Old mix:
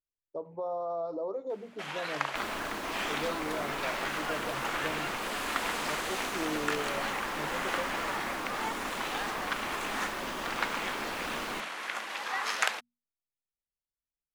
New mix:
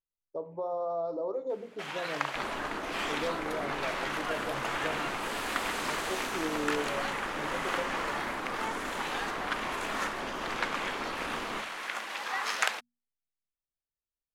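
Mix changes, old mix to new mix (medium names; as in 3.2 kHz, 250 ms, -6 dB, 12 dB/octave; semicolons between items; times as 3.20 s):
second sound: add steep low-pass 2.1 kHz 48 dB/octave; reverb: on, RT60 0.55 s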